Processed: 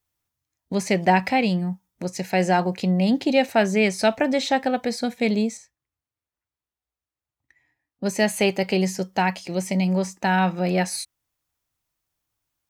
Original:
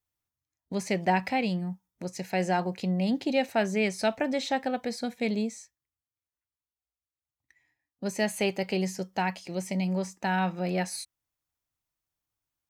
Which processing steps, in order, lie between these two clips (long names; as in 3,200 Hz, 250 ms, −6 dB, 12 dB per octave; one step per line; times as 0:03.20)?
0:05.57–0:08.04: high-shelf EQ 2,800 Hz −9.5 dB
level +7 dB